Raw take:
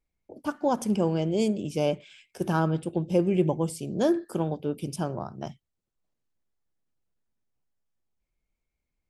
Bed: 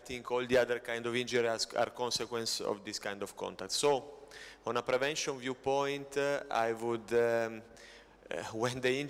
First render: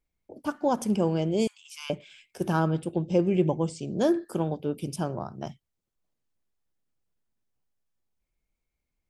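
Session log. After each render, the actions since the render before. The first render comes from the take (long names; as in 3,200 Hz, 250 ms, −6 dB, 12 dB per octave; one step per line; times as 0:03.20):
0:01.47–0:01.90: Butterworth high-pass 1,000 Hz 72 dB per octave
0:02.95–0:03.97: Butterworth low-pass 7,900 Hz 48 dB per octave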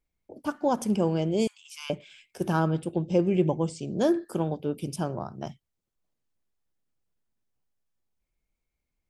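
no processing that can be heard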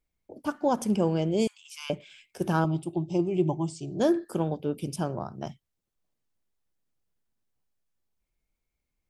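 0:02.64–0:04.00: phaser with its sweep stopped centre 330 Hz, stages 8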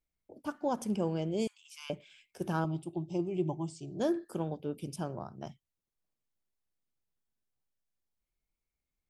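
level −7 dB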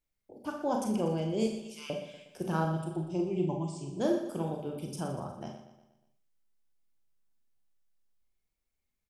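repeating echo 120 ms, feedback 48%, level −11 dB
four-comb reverb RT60 0.35 s, combs from 29 ms, DRR 2.5 dB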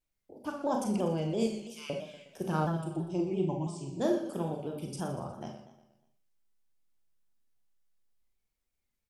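pitch modulation by a square or saw wave saw down 3 Hz, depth 100 cents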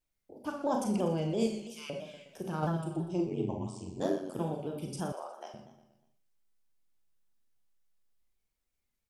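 0:01.77–0:02.63: downward compressor 1.5 to 1, threshold −39 dBFS
0:03.26–0:04.39: ring modulation 46 Hz
0:05.12–0:05.54: high-pass filter 470 Hz 24 dB per octave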